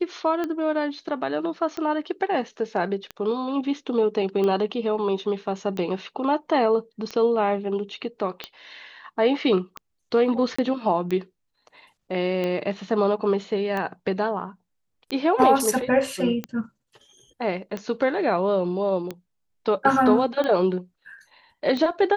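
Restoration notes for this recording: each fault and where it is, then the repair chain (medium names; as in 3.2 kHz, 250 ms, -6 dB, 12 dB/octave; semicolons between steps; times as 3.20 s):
tick 45 rpm -16 dBFS
10.56–10.59 s: dropout 25 ms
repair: de-click; interpolate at 10.56 s, 25 ms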